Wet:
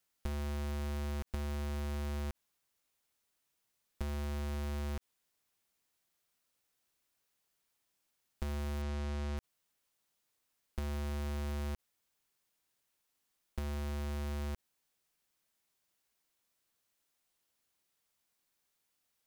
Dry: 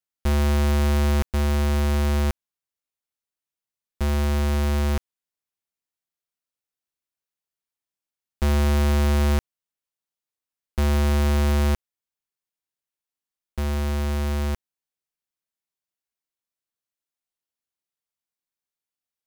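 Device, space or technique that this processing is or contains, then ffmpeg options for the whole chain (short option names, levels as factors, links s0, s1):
de-esser from a sidechain: -filter_complex "[0:a]asplit=2[s0][s1];[s1]highpass=4800,apad=whole_len=849614[s2];[s0][s2]sidechaincompress=threshold=0.00158:ratio=10:attack=0.52:release=28,asplit=3[s3][s4][s5];[s3]afade=t=out:st=8.81:d=0.02[s6];[s4]lowpass=7300,afade=t=in:st=8.81:d=0.02,afade=t=out:st=9.36:d=0.02[s7];[s5]afade=t=in:st=9.36:d=0.02[s8];[s6][s7][s8]amix=inputs=3:normalize=0,volume=3.16"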